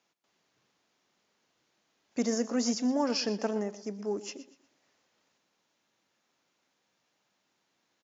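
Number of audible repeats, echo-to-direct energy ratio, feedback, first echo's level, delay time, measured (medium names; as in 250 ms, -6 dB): 3, -15.0 dB, 34%, -15.5 dB, 120 ms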